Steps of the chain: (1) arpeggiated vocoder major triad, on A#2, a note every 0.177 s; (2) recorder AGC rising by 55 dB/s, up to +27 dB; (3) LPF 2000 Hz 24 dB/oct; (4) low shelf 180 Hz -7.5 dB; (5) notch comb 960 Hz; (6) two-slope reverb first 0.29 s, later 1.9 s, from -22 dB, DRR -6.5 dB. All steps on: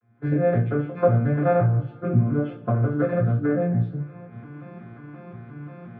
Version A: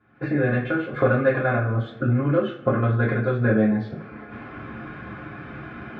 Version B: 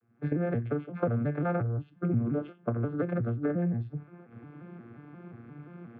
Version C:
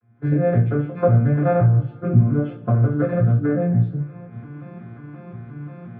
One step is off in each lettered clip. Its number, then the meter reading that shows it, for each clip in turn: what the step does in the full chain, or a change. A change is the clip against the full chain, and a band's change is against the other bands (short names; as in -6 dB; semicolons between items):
1, 2 kHz band +9.5 dB; 6, 250 Hz band +3.5 dB; 4, 125 Hz band +4.5 dB